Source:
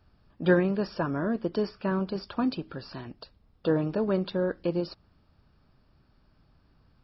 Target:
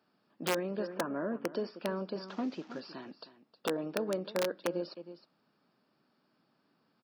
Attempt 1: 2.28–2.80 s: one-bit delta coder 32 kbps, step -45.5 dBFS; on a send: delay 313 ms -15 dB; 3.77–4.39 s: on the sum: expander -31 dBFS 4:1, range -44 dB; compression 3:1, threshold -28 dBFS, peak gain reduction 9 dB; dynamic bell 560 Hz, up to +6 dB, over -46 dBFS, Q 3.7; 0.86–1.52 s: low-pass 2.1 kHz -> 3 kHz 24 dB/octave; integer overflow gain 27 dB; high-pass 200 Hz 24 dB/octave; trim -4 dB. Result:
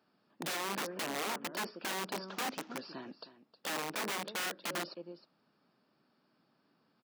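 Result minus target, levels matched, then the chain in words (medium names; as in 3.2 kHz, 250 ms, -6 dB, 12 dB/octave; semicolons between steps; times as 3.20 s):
integer overflow: distortion +27 dB
2.28–2.80 s: one-bit delta coder 32 kbps, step -45.5 dBFS; on a send: delay 313 ms -15 dB; 3.77–4.39 s: on the sum: expander -31 dBFS 4:1, range -44 dB; compression 3:1, threshold -28 dBFS, peak gain reduction 9 dB; dynamic bell 560 Hz, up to +6 dB, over -46 dBFS, Q 3.7; 0.86–1.52 s: low-pass 2.1 kHz -> 3 kHz 24 dB/octave; integer overflow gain 19 dB; high-pass 200 Hz 24 dB/octave; trim -4 dB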